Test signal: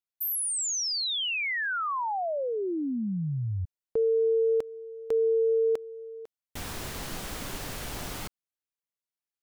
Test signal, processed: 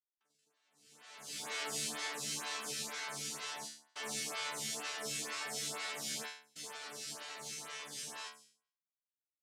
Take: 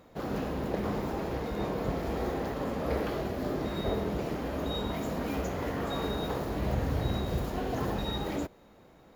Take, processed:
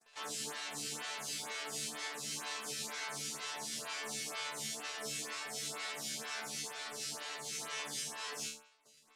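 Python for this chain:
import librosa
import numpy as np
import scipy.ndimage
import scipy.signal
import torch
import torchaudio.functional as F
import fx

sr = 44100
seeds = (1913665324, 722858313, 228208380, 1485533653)

y = fx.fuzz(x, sr, gain_db=54.0, gate_db=-51.0)
y = fx.ladder_lowpass(y, sr, hz=2700.0, resonance_pct=25)
y = fx.noise_vocoder(y, sr, seeds[0], bands=1)
y = fx.resonator_bank(y, sr, root=50, chord='fifth', decay_s=0.51)
y = fx.stagger_phaser(y, sr, hz=2.1)
y = y * 10.0 ** (-2.0 / 20.0)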